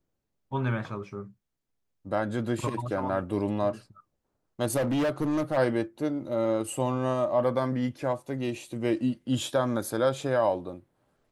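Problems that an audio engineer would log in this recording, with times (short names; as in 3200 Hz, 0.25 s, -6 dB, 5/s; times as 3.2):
4.76–5.58 clipped -23 dBFS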